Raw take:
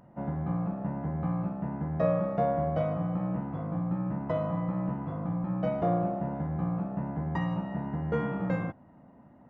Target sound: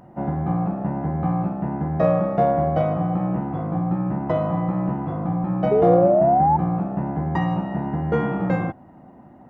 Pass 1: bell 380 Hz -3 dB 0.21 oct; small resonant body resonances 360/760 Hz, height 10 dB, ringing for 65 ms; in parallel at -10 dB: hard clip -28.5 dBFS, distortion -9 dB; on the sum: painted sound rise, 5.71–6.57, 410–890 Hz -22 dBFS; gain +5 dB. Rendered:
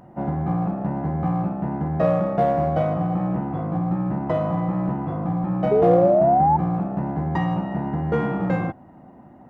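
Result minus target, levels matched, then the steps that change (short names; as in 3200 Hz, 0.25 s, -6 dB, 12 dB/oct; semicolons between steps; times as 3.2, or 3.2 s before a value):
hard clip: distortion +17 dB
change: hard clip -19 dBFS, distortion -26 dB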